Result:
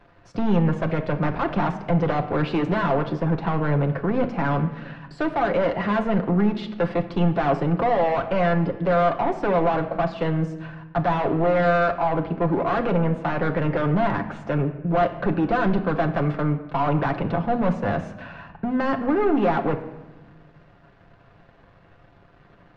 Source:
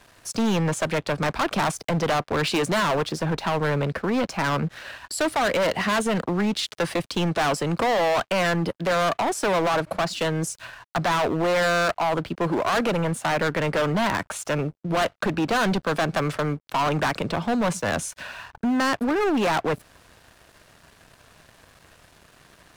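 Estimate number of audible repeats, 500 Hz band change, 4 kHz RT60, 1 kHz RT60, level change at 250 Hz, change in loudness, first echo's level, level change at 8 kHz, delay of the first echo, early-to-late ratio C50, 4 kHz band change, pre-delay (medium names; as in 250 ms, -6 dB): no echo, +1.5 dB, 0.75 s, 1.1 s, +2.5 dB, +1.0 dB, no echo, under -25 dB, no echo, 11.5 dB, -11.5 dB, 6 ms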